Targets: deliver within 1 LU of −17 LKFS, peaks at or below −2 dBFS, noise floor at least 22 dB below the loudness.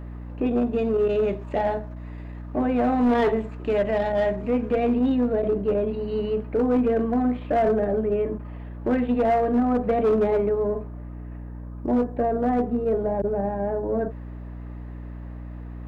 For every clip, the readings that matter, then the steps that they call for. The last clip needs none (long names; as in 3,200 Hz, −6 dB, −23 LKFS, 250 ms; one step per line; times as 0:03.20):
share of clipped samples 1.3%; peaks flattened at −16.0 dBFS; mains hum 60 Hz; hum harmonics up to 300 Hz; level of the hum −34 dBFS; integrated loudness −24.0 LKFS; sample peak −16.0 dBFS; target loudness −17.0 LKFS
→ clipped peaks rebuilt −16 dBFS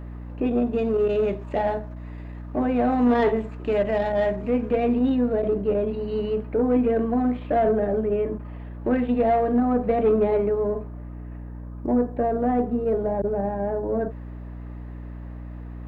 share of clipped samples 0.0%; mains hum 60 Hz; hum harmonics up to 300 Hz; level of the hum −34 dBFS
→ mains-hum notches 60/120/180/240/300 Hz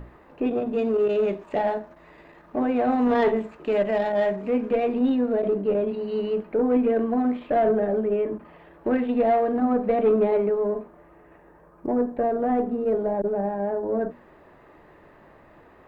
mains hum none found; integrated loudness −24.0 LKFS; sample peak −10.5 dBFS; target loudness −17.0 LKFS
→ level +7 dB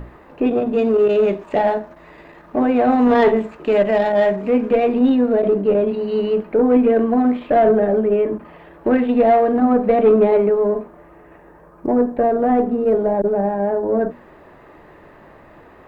integrated loudness −17.0 LKFS; sample peak −3.5 dBFS; background noise floor −46 dBFS